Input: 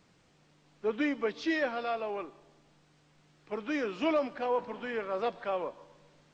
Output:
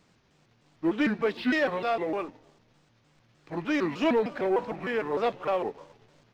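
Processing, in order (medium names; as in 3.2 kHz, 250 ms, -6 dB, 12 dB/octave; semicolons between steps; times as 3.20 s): pitch shift switched off and on -4.5 st, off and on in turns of 152 ms; waveshaping leveller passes 1; trim +2.5 dB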